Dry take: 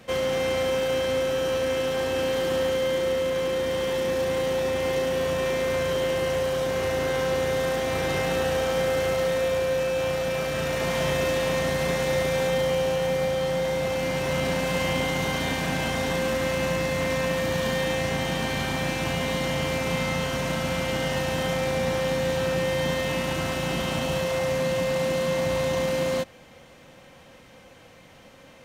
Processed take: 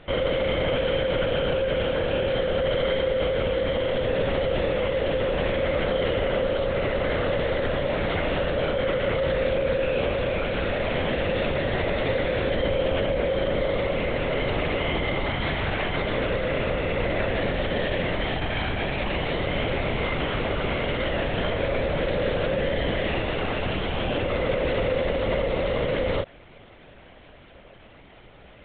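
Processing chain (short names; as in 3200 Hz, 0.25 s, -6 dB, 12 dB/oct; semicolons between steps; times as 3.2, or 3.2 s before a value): limiter -17.5 dBFS, peak gain reduction 4.5 dB; LPC vocoder at 8 kHz whisper; gain +1.5 dB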